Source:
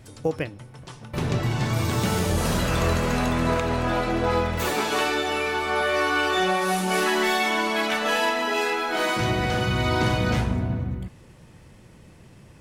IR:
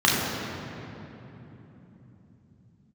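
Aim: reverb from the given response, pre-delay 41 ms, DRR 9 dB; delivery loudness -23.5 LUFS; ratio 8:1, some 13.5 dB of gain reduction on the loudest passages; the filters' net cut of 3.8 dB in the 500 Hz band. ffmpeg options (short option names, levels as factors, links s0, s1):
-filter_complex "[0:a]equalizer=f=500:t=o:g=-5,acompressor=threshold=0.02:ratio=8,asplit=2[s0][s1];[1:a]atrim=start_sample=2205,adelay=41[s2];[s1][s2]afir=irnorm=-1:irlink=0,volume=0.0355[s3];[s0][s3]amix=inputs=2:normalize=0,volume=4.47"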